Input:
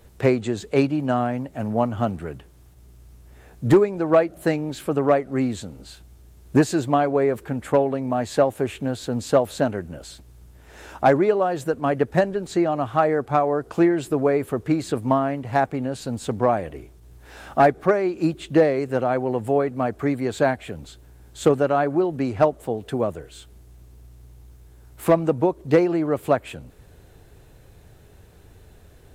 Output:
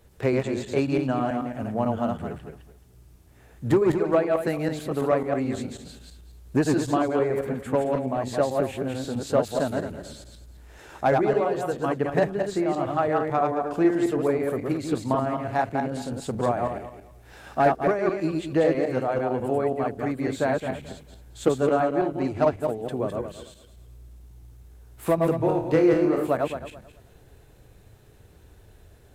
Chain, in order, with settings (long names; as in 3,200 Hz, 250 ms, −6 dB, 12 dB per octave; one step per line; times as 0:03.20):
feedback delay that plays each chunk backwards 109 ms, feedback 45%, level −2 dB
0:25.37–0:26.27: flutter between parallel walls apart 4.4 metres, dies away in 0.32 s
level −5.5 dB